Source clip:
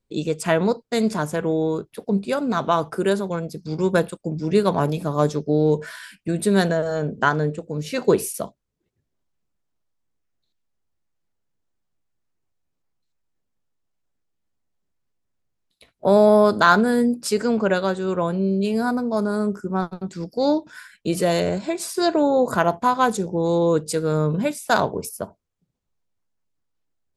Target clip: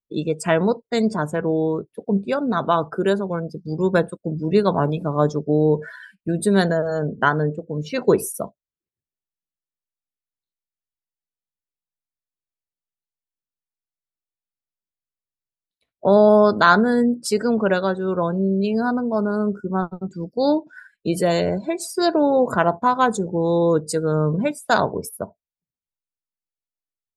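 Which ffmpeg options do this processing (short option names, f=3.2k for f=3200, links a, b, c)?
-af "afftdn=nr=22:nf=-36,volume=1dB"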